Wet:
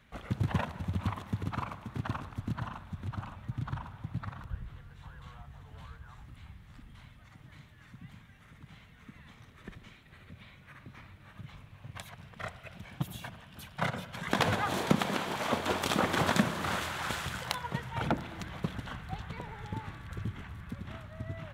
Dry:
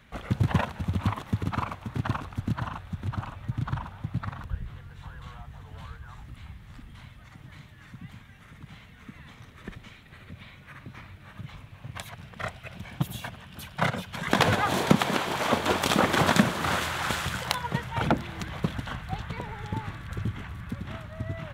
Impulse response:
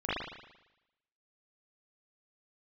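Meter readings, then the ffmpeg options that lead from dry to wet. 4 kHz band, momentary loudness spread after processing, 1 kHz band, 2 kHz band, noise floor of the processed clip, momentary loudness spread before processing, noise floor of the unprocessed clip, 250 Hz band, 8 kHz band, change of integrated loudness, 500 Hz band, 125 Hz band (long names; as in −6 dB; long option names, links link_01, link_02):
−6.0 dB, 24 LU, −6.0 dB, −6.0 dB, −56 dBFS, 24 LU, −51 dBFS, −6.0 dB, −6.0 dB, −6.0 dB, −6.0 dB, −6.0 dB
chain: -filter_complex "[0:a]asplit=2[link_01][link_02];[1:a]atrim=start_sample=2205,asetrate=24255,aresample=44100[link_03];[link_02][link_03]afir=irnorm=-1:irlink=0,volume=-27dB[link_04];[link_01][link_04]amix=inputs=2:normalize=0,volume=-6.5dB"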